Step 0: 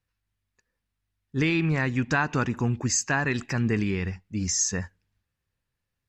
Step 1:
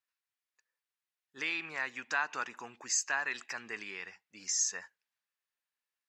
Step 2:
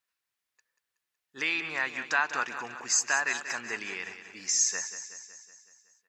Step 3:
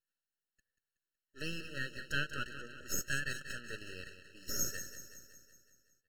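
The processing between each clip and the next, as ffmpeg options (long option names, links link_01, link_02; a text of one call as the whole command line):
ffmpeg -i in.wav -af "highpass=860,volume=-5.5dB" out.wav
ffmpeg -i in.wav -af "aecho=1:1:186|372|558|744|930|1116|1302:0.282|0.163|0.0948|0.055|0.0319|0.0185|0.0107,volume=5.5dB" out.wav
ffmpeg -i in.wav -af "aeval=exprs='max(val(0),0)':channel_layout=same,afftfilt=real='re*eq(mod(floor(b*sr/1024/640),2),0)':imag='im*eq(mod(floor(b*sr/1024/640),2),0)':win_size=1024:overlap=0.75,volume=-3.5dB" out.wav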